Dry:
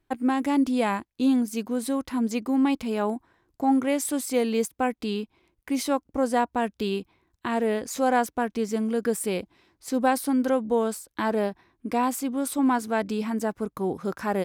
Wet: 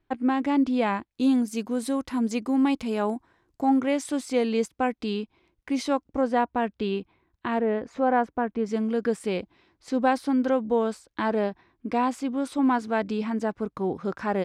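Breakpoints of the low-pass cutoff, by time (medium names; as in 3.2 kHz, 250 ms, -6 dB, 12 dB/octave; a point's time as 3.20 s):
4.1 kHz
from 1.11 s 9.7 kHz
from 3.69 s 5.7 kHz
from 6.21 s 3.3 kHz
from 7.59 s 1.8 kHz
from 8.66 s 4.6 kHz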